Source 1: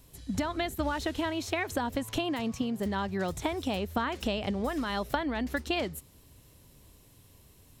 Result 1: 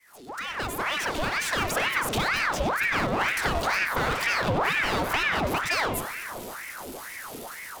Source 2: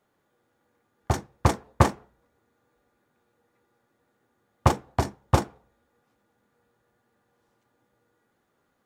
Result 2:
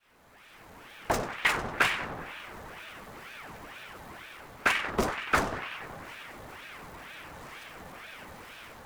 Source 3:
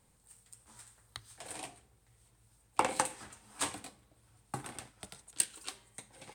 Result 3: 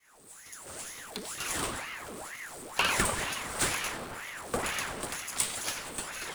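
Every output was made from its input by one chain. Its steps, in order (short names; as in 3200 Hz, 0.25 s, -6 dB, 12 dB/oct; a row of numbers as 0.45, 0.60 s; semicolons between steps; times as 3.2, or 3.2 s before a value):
opening faded in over 1.70 s; AGC gain up to 7.5 dB; power-law curve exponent 0.5; on a send: tape echo 94 ms, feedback 83%, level -7.5 dB, low-pass 3100 Hz; on the sum: ring modulator with a swept carrier 1200 Hz, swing 75%, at 2.1 Hz; normalise peaks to -12 dBFS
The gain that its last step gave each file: -7.5, -10.5, -8.0 dB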